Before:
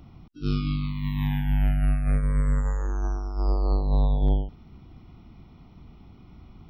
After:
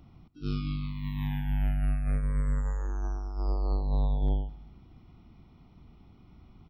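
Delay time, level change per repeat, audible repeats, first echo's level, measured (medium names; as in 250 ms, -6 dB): 121 ms, -6.0 dB, 3, -20.0 dB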